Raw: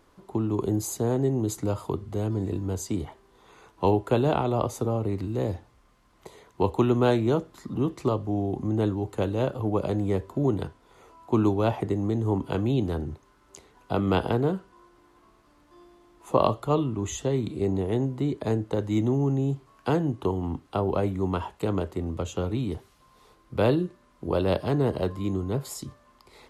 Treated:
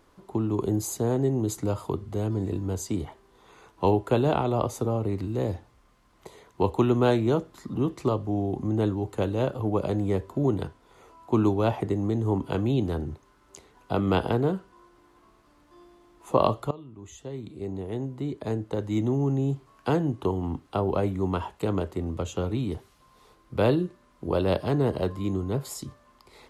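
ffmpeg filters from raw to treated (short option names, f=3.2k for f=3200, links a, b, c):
-filter_complex "[0:a]asplit=2[a][b];[a]atrim=end=16.71,asetpts=PTS-STARTPTS,afade=t=out:st=16.706:d=0.004:c=hsin:silence=0.0841395[c];[b]atrim=start=16.71,asetpts=PTS-STARTPTS,afade=t=in:d=2.76:silence=0.0841395[d];[c][d]concat=n=2:v=0:a=1"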